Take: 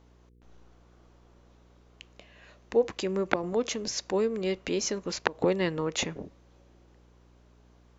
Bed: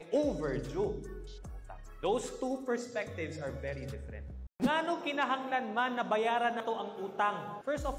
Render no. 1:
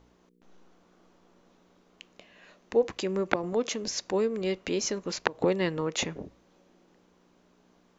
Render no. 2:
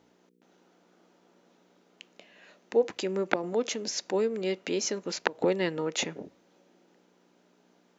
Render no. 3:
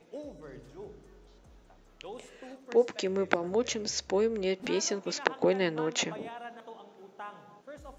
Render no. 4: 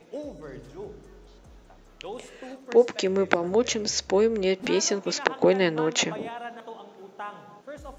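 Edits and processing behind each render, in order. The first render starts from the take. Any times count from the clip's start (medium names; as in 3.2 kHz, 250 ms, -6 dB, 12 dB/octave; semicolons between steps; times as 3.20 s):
de-hum 60 Hz, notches 2
high-pass 190 Hz 12 dB/octave; band-stop 1.1 kHz, Q 8.1
add bed -12.5 dB
trim +6 dB; peak limiter -1 dBFS, peak gain reduction 2 dB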